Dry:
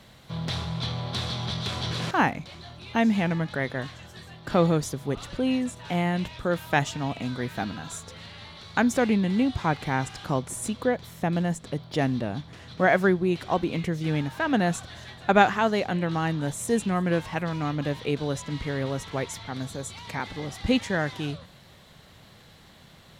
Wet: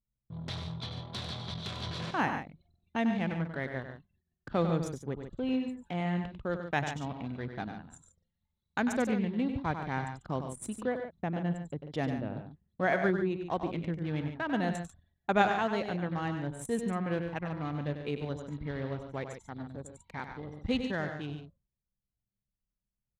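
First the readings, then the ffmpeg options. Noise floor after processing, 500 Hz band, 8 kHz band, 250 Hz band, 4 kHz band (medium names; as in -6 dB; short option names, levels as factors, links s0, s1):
under -85 dBFS, -7.0 dB, -12.0 dB, -7.0 dB, -9.5 dB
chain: -af "anlmdn=15.8,agate=range=0.224:threshold=0.00178:ratio=16:detection=peak,aecho=1:1:96.21|142.9:0.398|0.316,volume=0.398"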